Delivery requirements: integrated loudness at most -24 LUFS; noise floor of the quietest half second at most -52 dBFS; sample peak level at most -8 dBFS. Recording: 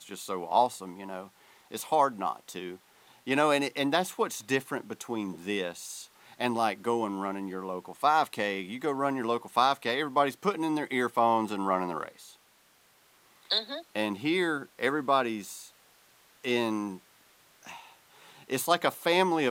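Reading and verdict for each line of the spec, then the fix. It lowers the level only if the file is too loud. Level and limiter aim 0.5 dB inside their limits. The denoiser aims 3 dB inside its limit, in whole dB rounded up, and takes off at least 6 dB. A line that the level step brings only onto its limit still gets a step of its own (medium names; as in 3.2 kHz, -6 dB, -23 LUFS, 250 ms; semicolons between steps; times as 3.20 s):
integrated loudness -29.5 LUFS: pass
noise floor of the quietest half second -63 dBFS: pass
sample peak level -10.0 dBFS: pass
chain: none needed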